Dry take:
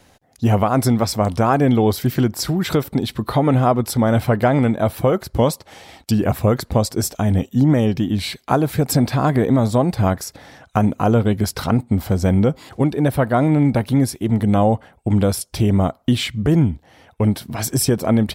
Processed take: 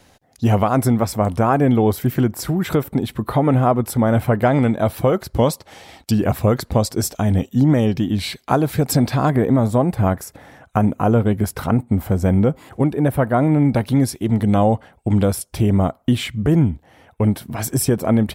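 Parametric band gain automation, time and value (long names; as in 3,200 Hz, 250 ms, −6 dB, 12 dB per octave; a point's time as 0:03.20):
parametric band 4,600 Hz 1.1 octaves
+1 dB
from 0:00.77 −9 dB
from 0:04.44 −0.5 dB
from 0:09.30 −11 dB
from 0:13.73 0 dB
from 0:15.25 −6.5 dB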